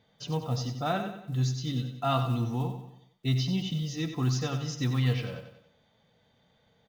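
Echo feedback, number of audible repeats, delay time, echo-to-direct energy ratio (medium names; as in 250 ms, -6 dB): 45%, 4, 93 ms, -8.0 dB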